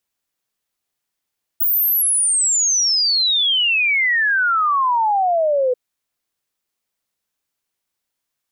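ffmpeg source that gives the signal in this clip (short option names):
-f lavfi -i "aevalsrc='0.2*clip(min(t,4.14-t)/0.01,0,1)*sin(2*PI*16000*4.14/log(490/16000)*(exp(log(490/16000)*t/4.14)-1))':d=4.14:s=44100"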